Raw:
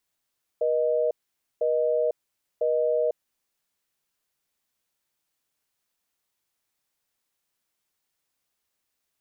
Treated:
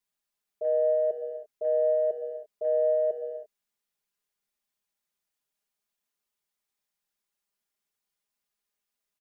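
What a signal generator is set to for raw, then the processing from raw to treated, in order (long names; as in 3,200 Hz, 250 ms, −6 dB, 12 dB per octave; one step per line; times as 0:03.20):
call progress tone busy tone, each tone −23.5 dBFS 2.74 s
comb filter 4.9 ms, depth 99%
noise gate −19 dBFS, range −10 dB
reverb whose tail is shaped and stops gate 360 ms flat, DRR 7.5 dB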